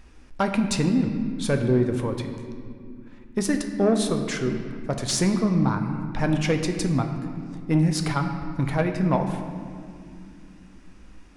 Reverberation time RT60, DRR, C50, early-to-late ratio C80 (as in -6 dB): 2.4 s, 4.5 dB, 7.0 dB, 7.5 dB